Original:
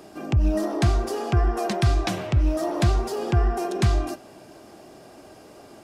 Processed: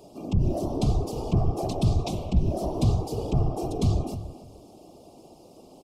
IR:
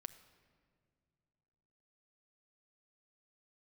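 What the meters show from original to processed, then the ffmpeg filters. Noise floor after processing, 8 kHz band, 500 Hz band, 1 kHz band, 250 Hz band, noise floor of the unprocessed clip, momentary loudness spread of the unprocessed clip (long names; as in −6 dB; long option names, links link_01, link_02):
−52 dBFS, −5.0 dB, −3.5 dB, −5.5 dB, −1.5 dB, −48 dBFS, 4 LU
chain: -filter_complex "[0:a]lowshelf=frequency=380:gain=3,afftfilt=real='hypot(re,im)*cos(2*PI*random(0))':imag='hypot(re,im)*sin(2*PI*random(1))':win_size=512:overlap=0.75,asuperstop=centerf=1700:order=4:qfactor=0.86,asplit=2[link_01][link_02];[link_02]adelay=297,lowpass=frequency=2200:poles=1,volume=-13dB,asplit=2[link_03][link_04];[link_04]adelay=297,lowpass=frequency=2200:poles=1,volume=0.18[link_05];[link_01][link_03][link_05]amix=inputs=3:normalize=0,asplit=2[link_06][link_07];[link_07]asoftclip=type=tanh:threshold=-20dB,volume=-8.5dB[link_08];[link_06][link_08]amix=inputs=2:normalize=0,volume=-1.5dB"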